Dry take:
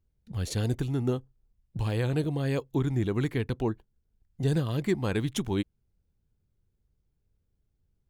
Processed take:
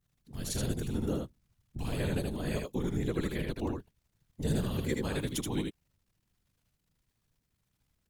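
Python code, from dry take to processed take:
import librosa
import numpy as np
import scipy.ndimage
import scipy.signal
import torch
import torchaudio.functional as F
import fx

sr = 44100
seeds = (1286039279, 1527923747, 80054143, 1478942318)

y = fx.high_shelf(x, sr, hz=5500.0, db=11.0)
y = fx.dmg_crackle(y, sr, seeds[0], per_s=160.0, level_db=-58.0)
y = fx.vibrato(y, sr, rate_hz=1.0, depth_cents=43.0)
y = fx.whisperise(y, sr, seeds[1])
y = y + 10.0 ** (-4.0 / 20.0) * np.pad(y, (int(78 * sr / 1000.0), 0))[:len(y)]
y = F.gain(torch.from_numpy(y), -6.0).numpy()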